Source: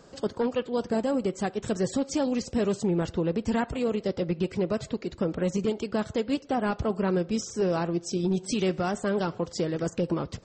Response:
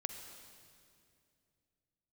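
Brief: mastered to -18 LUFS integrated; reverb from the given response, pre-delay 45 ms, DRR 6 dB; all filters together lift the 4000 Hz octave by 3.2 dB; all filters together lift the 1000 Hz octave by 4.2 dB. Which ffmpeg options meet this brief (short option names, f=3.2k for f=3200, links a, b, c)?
-filter_complex "[0:a]equalizer=f=1k:t=o:g=5.5,equalizer=f=4k:t=o:g=4,asplit=2[a][b];[1:a]atrim=start_sample=2205,adelay=45[c];[b][c]afir=irnorm=-1:irlink=0,volume=-5.5dB[d];[a][d]amix=inputs=2:normalize=0,volume=8.5dB"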